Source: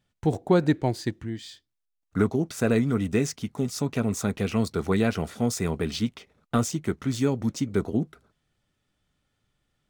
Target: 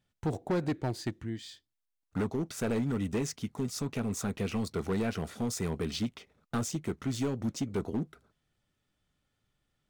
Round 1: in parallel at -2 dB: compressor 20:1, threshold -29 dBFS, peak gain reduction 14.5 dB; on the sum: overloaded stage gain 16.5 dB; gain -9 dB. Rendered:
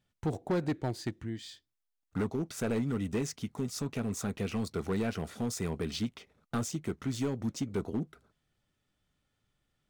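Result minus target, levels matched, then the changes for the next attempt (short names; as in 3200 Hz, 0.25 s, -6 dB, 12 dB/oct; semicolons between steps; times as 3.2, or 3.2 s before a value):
compressor: peak gain reduction +5.5 dB
change: compressor 20:1, threshold -23 dBFS, peak gain reduction 9 dB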